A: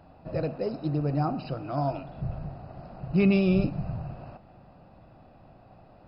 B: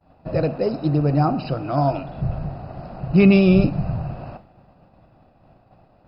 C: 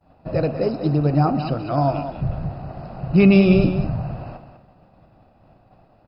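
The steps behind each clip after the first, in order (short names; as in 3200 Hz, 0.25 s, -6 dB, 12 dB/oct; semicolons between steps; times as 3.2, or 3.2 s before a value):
expander -45 dBFS; gain +8.5 dB
echo 0.198 s -10 dB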